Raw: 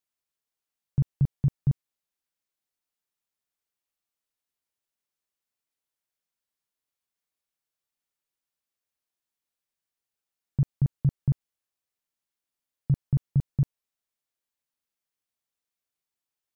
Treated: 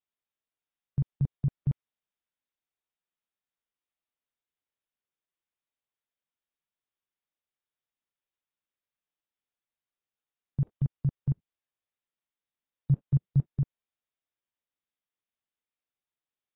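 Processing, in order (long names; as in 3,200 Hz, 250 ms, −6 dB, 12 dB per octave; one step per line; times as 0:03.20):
0:11.31–0:13.45: dynamic equaliser 140 Hz, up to +4 dB, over −30 dBFS, Q 1.4
level −4 dB
AAC 16 kbit/s 16,000 Hz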